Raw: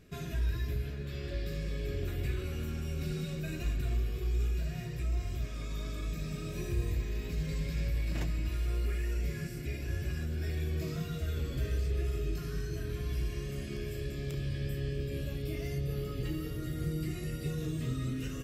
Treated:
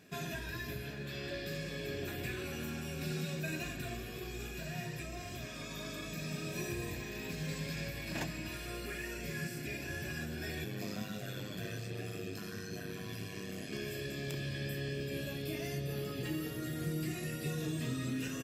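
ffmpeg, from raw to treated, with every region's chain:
ffmpeg -i in.wav -filter_complex "[0:a]asettb=1/sr,asplit=3[link_01][link_02][link_03];[link_01]atrim=end=10.644[link_04];[link_02]atrim=start=10.64:end=13.73,asetpts=PTS-STARTPTS,afade=type=in:duration=0.004:curve=qsin,afade=type=out:start_time=3.086:duration=0.004:curve=qsin,highpass=41,aeval=exprs='val(0)*sin(2*PI*50*n/s)':channel_layout=same[link_05];[link_03]atrim=start=13.726[link_06];[link_04][link_05]acrossfade=duration=0.004:curve1=hsin:curve2=qsin[link_07];[link_07][link_06]acrossfade=duration=0.004:curve1=qsin:curve2=hsin,highpass=230,aecho=1:1:1.2:0.39,volume=3.5dB" out.wav

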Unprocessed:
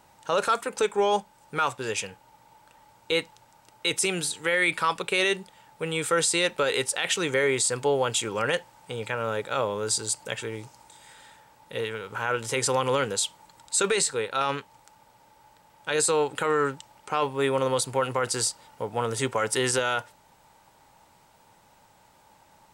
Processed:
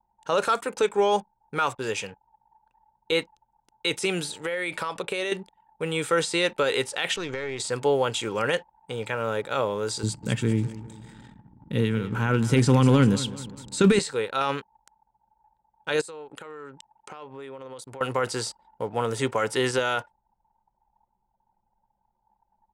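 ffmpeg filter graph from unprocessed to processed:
ffmpeg -i in.wav -filter_complex "[0:a]asettb=1/sr,asplit=3[link_01][link_02][link_03];[link_01]atrim=end=4.294[link_04];[link_02]atrim=start=4.29:end=5.32,asetpts=PTS-STARTPTS,afade=type=in:duration=0.004:curve=qsin,afade=type=out:start_time=1.026:duration=0.004:curve=qsin,equalizer=frequency=590:width=1.9:gain=5.5,acompressor=threshold=-26dB:ratio=6:attack=3.2:release=140:knee=1:detection=peak[link_05];[link_03]atrim=start=5.316[link_06];[link_04][link_05]acrossfade=duration=0.004:curve1=hsin:curve2=qsin[link_07];[link_07][link_06]acrossfade=duration=0.004:curve1=qsin:curve2=hsin,asettb=1/sr,asplit=3[link_08][link_09][link_10];[link_08]atrim=end=7.164[link_11];[link_09]atrim=start=7.16:end=7.6,asetpts=PTS-STARTPTS,afade=type=in:duration=0.004:curve=qsin,afade=type=out:start_time=0.436:duration=0.004:curve=qsin,lowpass=frequency=6400:width=0.5412,lowpass=frequency=6400:width=1.3066,acompressor=threshold=-26dB:ratio=6:attack=3.2:release=140:knee=1:detection=peak,aeval=exprs='(tanh(14.1*val(0)+0.65)-tanh(0.65))/14.1':channel_layout=same[link_12];[link_10]atrim=start=7.596[link_13];[link_11][link_12]acrossfade=duration=0.004:curve1=hsin:curve2=qsin[link_14];[link_14][link_13]acrossfade=duration=0.004:curve1=qsin:curve2=hsin,asettb=1/sr,asplit=3[link_15][link_16][link_17];[link_15]atrim=end=10.034[link_18];[link_16]atrim=start=10.03:end=13.99,asetpts=PTS-STARTPTS,afade=type=in:duration=0.004:curve=qsin,afade=type=out:start_time=3.956:duration=0.004:curve=qsin,lowshelf=frequency=350:width_type=q:width=1.5:gain=14,asoftclip=type=hard:threshold=-12dB,aecho=1:1:197|394|591|788:0.168|0.0772|0.0355|0.0163,atrim=end_sample=174636[link_19];[link_17]atrim=start=13.986[link_20];[link_18][link_19]acrossfade=duration=0.004:curve1=hsin:curve2=qsin[link_21];[link_21][link_20]acrossfade=duration=0.004:curve1=qsin:curve2=hsin,asettb=1/sr,asplit=3[link_22][link_23][link_24];[link_22]atrim=end=16.014[link_25];[link_23]atrim=start=16.01:end=18.01,asetpts=PTS-STARTPTS,afade=type=in:duration=0.004:curve=qsin,afade=type=out:start_time=1.996:duration=0.004:curve=qsin,lowshelf=frequency=84:gain=-11.5,acompressor=threshold=-39dB:ratio=6:attack=3.2:release=140:knee=1:detection=peak[link_26];[link_24]atrim=start=18.006[link_27];[link_25][link_26]acrossfade=duration=0.004:curve1=hsin:curve2=qsin[link_28];[link_28][link_27]acrossfade=duration=0.004:curve1=qsin:curve2=hsin,acrossover=split=4900[link_29][link_30];[link_30]acompressor=threshold=-35dB:ratio=4:attack=1:release=60[link_31];[link_29][link_31]amix=inputs=2:normalize=0,anlmdn=0.0158,equalizer=frequency=280:width=0.67:gain=2.5" out.wav

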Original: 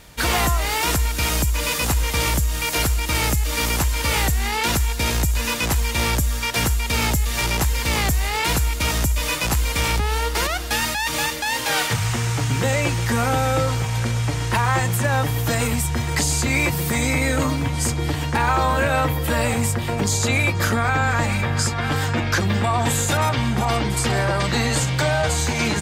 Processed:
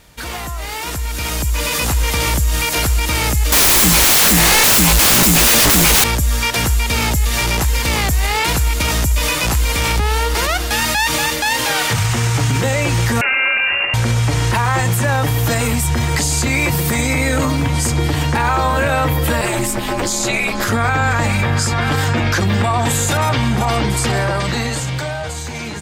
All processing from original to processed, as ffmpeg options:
ffmpeg -i in.wav -filter_complex "[0:a]asettb=1/sr,asplit=3[link_01][link_02][link_03];[link_01]atrim=end=3.524[link_04];[link_02]atrim=start=3.52:end=6.04,asetpts=PTS-STARTPTS,afade=type=in:duration=0.004:curve=qsin,afade=type=out:start_time=2.516:duration=0.004:curve=qsin,highshelf=frequency=9800:gain=7.5,aeval=exprs='0.473*sin(PI/2*7.94*val(0)/0.473)':channel_layout=same[link_05];[link_03]atrim=start=6.036[link_06];[link_04][link_05]acrossfade=duration=0.004:curve1=hsin:curve2=qsin[link_07];[link_07][link_06]acrossfade=duration=0.004:curve1=qsin:curve2=hsin,asettb=1/sr,asplit=3[link_08][link_09][link_10];[link_08]atrim=end=13.214[link_11];[link_09]atrim=start=13.21:end=13.94,asetpts=PTS-STARTPTS,afade=type=in:duration=0.004:curve=qsin,afade=type=out:start_time=0.726:duration=0.004:curve=qsin,highpass=frequency=170:poles=1,lowpass=frequency=2500:width_type=q:width=0.5098,lowpass=frequency=2500:width_type=q:width=0.6013,lowpass=frequency=2500:width_type=q:width=0.9,lowpass=frequency=2500:width_type=q:width=2.563,afreqshift=-2900[link_12];[link_10]atrim=start=13.936[link_13];[link_11][link_12]acrossfade=duration=0.004:curve1=hsin:curve2=qsin[link_14];[link_14][link_13]acrossfade=duration=0.004:curve1=qsin:curve2=hsin,asettb=1/sr,asplit=3[link_15][link_16][link_17];[link_15]atrim=end=19.414[link_18];[link_16]atrim=start=19.41:end=20.69,asetpts=PTS-STARTPTS,afade=type=in:duration=0.004:curve=qsin,afade=type=out:start_time=1.276:duration=0.004:curve=qsin,lowshelf=frequency=230:gain=-8.5,asplit=2[link_19][link_20];[link_20]adelay=13,volume=-2dB[link_21];[link_19][link_21]amix=inputs=2:normalize=0,atrim=end_sample=56448,aeval=exprs='val(0)*sin(2*PI*110*n/s)':channel_layout=same[link_22];[link_17]atrim=start=20.686[link_23];[link_18][link_22]acrossfade=duration=0.004:curve1=hsin:curve2=qsin[link_24];[link_24][link_23]acrossfade=duration=0.004:curve1=qsin:curve2=hsin,alimiter=limit=-16.5dB:level=0:latency=1:release=41,dynaudnorm=framelen=210:gausssize=13:maxgain=10dB,volume=-1.5dB" out.wav

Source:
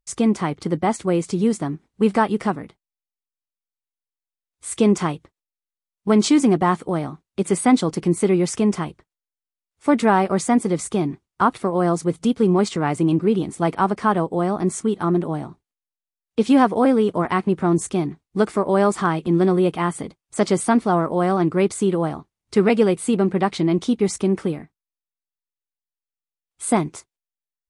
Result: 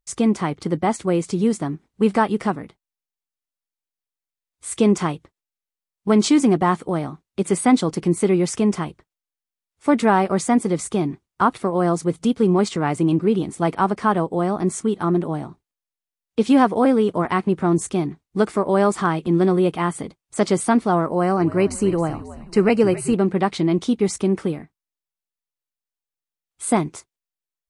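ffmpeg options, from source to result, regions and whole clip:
ffmpeg -i in.wav -filter_complex "[0:a]asettb=1/sr,asplit=3[link_01][link_02][link_03];[link_01]atrim=end=21.084[link_04];[link_02]atrim=start=21.08:end=23.14,asetpts=PTS-STARTPTS,afade=type=in:duration=0.004:curve=qsin,afade=type=out:start_time=2.056:duration=0.004:curve=qsin,asuperstop=centerf=3500:order=20:qfactor=4.7,asplit=5[link_05][link_06][link_07][link_08][link_09];[link_06]adelay=270,afreqshift=-80,volume=-15.5dB[link_10];[link_07]adelay=540,afreqshift=-160,volume=-22.1dB[link_11];[link_08]adelay=810,afreqshift=-240,volume=-28.6dB[link_12];[link_09]adelay=1080,afreqshift=-320,volume=-35.2dB[link_13];[link_05][link_10][link_11][link_12][link_13]amix=inputs=5:normalize=0,atrim=end_sample=90846[link_14];[link_03]atrim=start=23.136[link_15];[link_04][link_14]acrossfade=duration=0.004:curve1=hsin:curve2=qsin[link_16];[link_16][link_15]acrossfade=duration=0.004:curve1=qsin:curve2=hsin" out.wav

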